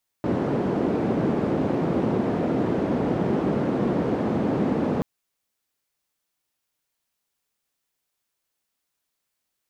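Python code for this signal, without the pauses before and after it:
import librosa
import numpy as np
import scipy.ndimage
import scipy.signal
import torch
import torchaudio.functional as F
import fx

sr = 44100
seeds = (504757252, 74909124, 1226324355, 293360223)

y = fx.band_noise(sr, seeds[0], length_s=4.78, low_hz=180.0, high_hz=310.0, level_db=-23.5)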